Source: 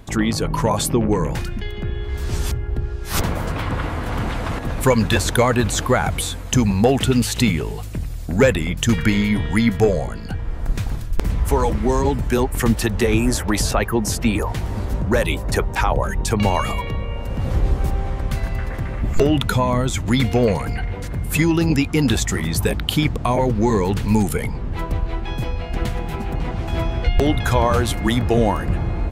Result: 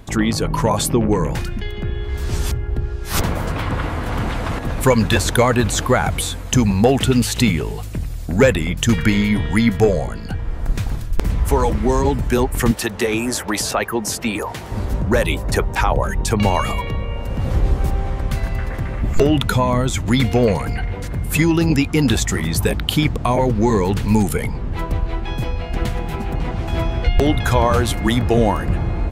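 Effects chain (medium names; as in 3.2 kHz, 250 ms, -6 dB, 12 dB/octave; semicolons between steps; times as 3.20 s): 12.71–14.72 s: high-pass 340 Hz 6 dB/octave; trim +1.5 dB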